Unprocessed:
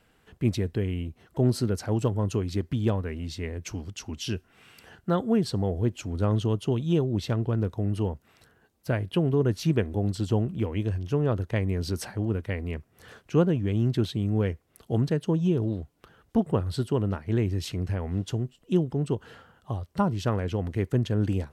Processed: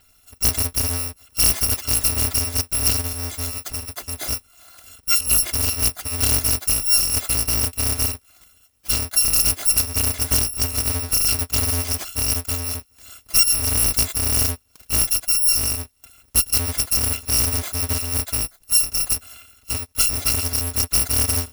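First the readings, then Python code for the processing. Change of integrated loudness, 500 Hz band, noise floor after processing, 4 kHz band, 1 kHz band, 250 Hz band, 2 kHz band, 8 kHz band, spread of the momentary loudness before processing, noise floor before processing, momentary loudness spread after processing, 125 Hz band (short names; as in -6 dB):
+9.0 dB, -7.5 dB, -57 dBFS, +18.0 dB, +2.5 dB, -8.5 dB, +10.0 dB, +27.5 dB, 10 LU, -65 dBFS, 10 LU, -3.0 dB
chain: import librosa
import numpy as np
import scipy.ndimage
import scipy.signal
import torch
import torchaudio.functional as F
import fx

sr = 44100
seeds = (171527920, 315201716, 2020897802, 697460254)

y = fx.bit_reversed(x, sr, seeds[0], block=256)
y = fx.doppler_dist(y, sr, depth_ms=0.26)
y = y * 10.0 ** (7.5 / 20.0)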